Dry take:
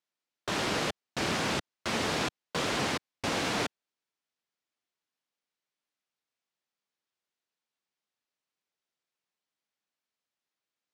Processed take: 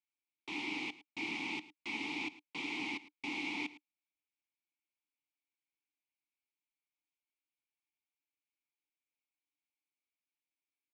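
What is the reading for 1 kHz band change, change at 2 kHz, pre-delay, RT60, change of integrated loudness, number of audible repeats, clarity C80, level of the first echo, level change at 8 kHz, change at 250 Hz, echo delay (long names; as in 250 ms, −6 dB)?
−13.5 dB, −5.5 dB, no reverb audible, no reverb audible, −8.5 dB, 1, no reverb audible, −17.5 dB, −19.0 dB, −7.5 dB, 108 ms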